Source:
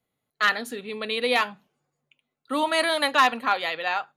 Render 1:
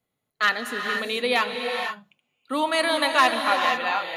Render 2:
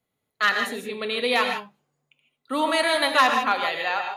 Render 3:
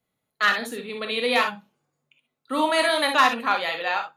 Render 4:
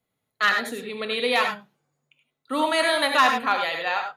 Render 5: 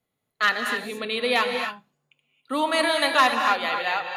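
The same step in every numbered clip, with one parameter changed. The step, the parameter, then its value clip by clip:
non-linear reverb, gate: 520, 180, 80, 120, 300 ms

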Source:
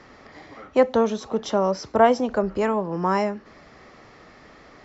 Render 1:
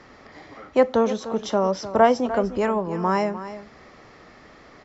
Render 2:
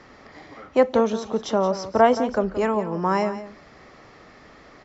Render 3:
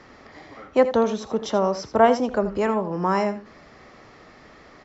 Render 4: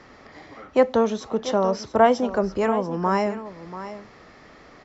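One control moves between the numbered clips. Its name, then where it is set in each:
echo, time: 301, 174, 82, 688 ms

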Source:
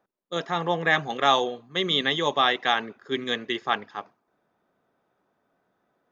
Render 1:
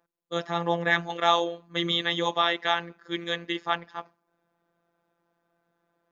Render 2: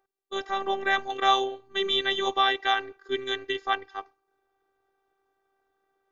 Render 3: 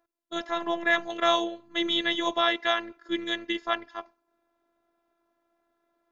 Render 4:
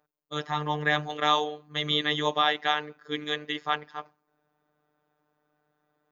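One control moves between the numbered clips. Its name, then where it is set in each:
robotiser, frequency: 170, 390, 340, 150 Hz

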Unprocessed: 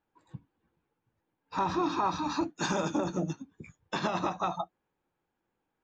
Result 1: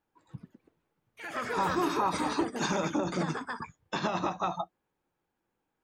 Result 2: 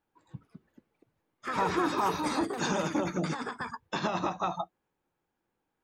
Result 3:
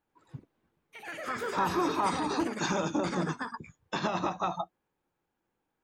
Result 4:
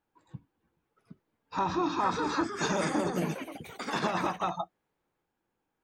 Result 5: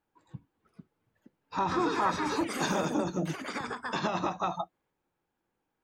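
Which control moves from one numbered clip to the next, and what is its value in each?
echoes that change speed, time: 177, 293, 96, 851, 534 ms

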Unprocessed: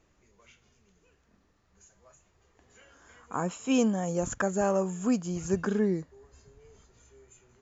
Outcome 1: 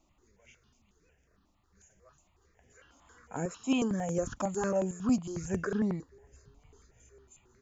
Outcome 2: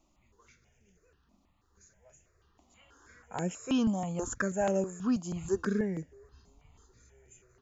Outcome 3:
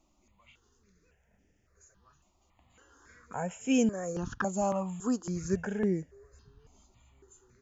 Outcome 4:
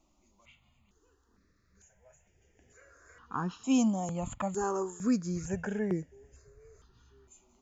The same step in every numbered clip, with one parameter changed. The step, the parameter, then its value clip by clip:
step phaser, rate: 11, 6.2, 3.6, 2.2 Hz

